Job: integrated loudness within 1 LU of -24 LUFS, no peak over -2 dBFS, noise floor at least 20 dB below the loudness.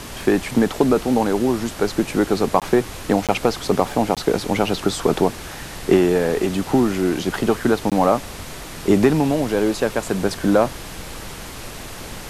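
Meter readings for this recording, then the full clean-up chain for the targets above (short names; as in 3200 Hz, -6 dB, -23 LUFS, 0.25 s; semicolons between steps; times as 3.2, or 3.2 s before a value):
dropouts 4; longest dropout 17 ms; noise floor -35 dBFS; noise floor target -40 dBFS; loudness -20.0 LUFS; peak -1.5 dBFS; loudness target -24.0 LUFS
-> interpolate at 2.6/3.27/4.15/7.9, 17 ms; noise print and reduce 6 dB; gain -4 dB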